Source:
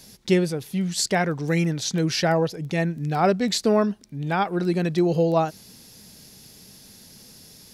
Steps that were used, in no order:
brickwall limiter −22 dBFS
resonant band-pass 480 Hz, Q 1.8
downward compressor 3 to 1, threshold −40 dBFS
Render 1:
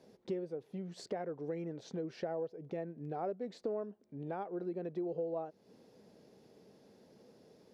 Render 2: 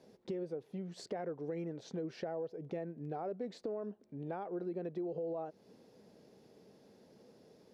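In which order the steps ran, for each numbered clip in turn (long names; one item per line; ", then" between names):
resonant band-pass, then downward compressor, then brickwall limiter
resonant band-pass, then brickwall limiter, then downward compressor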